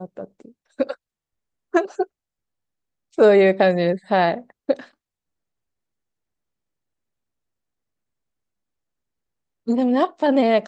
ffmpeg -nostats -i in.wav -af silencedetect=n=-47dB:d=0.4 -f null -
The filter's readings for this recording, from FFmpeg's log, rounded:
silence_start: 0.95
silence_end: 1.73 | silence_duration: 0.79
silence_start: 2.06
silence_end: 3.13 | silence_duration: 1.07
silence_start: 4.89
silence_end: 9.67 | silence_duration: 4.78